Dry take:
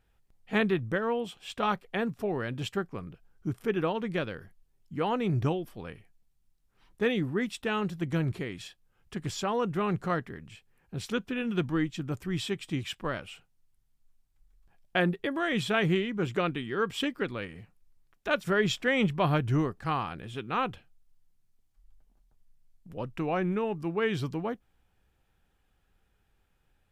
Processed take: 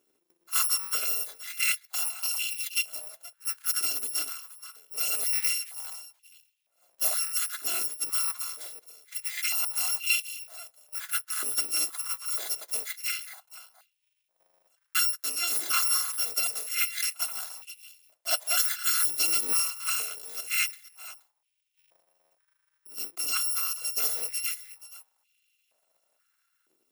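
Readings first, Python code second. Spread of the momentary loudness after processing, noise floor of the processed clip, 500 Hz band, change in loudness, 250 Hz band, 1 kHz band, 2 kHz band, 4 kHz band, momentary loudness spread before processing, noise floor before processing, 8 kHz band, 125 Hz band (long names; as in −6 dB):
15 LU, −77 dBFS, −19.0 dB, +4.0 dB, −27.0 dB, −7.0 dB, −0.5 dB, +7.5 dB, 13 LU, −71 dBFS, +22.0 dB, below −40 dB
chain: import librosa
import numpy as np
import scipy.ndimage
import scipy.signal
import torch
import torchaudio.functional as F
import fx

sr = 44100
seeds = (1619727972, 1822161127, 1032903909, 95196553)

y = fx.bit_reversed(x, sr, seeds[0], block=256)
y = y + 10.0 ** (-15.0 / 20.0) * np.pad(y, (int(476 * sr / 1000.0), 0))[:len(y)]
y = fx.filter_held_highpass(y, sr, hz=2.1, low_hz=350.0, high_hz=2700.0)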